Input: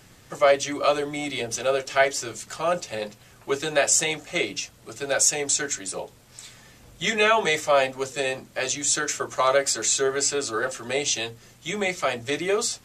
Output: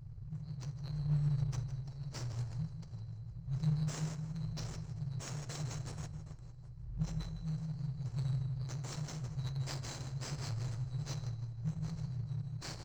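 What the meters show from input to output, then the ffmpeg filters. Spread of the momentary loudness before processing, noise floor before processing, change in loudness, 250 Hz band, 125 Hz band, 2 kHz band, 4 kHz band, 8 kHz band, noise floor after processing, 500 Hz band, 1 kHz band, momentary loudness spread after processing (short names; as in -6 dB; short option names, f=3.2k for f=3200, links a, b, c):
14 LU, -53 dBFS, -16.0 dB, -7.5 dB, +7.5 dB, -29.5 dB, -22.5 dB, -27.0 dB, -49 dBFS, -32.5 dB, -27.0 dB, 11 LU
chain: -filter_complex "[0:a]asplit=2[a][b];[b]aecho=0:1:46|64|81|332|768:0.335|0.158|0.224|0.106|0.2[c];[a][c]amix=inputs=2:normalize=0,tremolo=f=0.85:d=0.51,afftfilt=real='re*(1-between(b*sr/4096,170,3900))':imag='im*(1-between(b*sr/4096,170,3900))':win_size=4096:overlap=0.75,asplit=2[d][e];[e]adelay=157,lowpass=f=4.1k:p=1,volume=-3dB,asplit=2[f][g];[g]adelay=157,lowpass=f=4.1k:p=1,volume=0.49,asplit=2[h][i];[i]adelay=157,lowpass=f=4.1k:p=1,volume=0.49,asplit=2[j][k];[k]adelay=157,lowpass=f=4.1k:p=1,volume=0.49,asplit=2[l][m];[m]adelay=157,lowpass=f=4.1k:p=1,volume=0.49,asplit=2[n][o];[o]adelay=157,lowpass=f=4.1k:p=1,volume=0.49[p];[f][h][j][l][n][p]amix=inputs=6:normalize=0[q];[d][q]amix=inputs=2:normalize=0,volume=22.5dB,asoftclip=hard,volume=-22.5dB,equalizer=f=1.7k:w=2.7:g=6,acrusher=bits=2:mode=log:mix=0:aa=0.000001,adynamicsmooth=sensitivity=2.5:basefreq=680,volume=8dB"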